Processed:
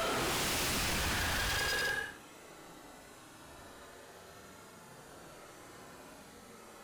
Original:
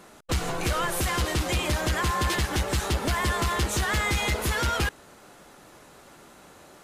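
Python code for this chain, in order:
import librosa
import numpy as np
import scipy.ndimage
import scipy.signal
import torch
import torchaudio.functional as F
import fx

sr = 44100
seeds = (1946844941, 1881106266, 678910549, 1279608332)

y = fx.paulstretch(x, sr, seeds[0], factor=17.0, window_s=0.05, from_s=4.78)
y = 10.0 ** (-26.5 / 20.0) * (np.abs((y / 10.0 ** (-26.5 / 20.0) + 3.0) % 4.0 - 2.0) - 1.0)
y = y * 10.0 ** (-2.0 / 20.0)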